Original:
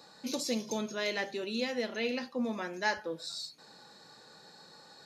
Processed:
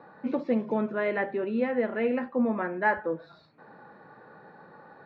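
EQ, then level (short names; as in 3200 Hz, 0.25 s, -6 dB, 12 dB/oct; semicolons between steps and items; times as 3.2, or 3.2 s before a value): LPF 1800 Hz 24 dB/oct; +7.5 dB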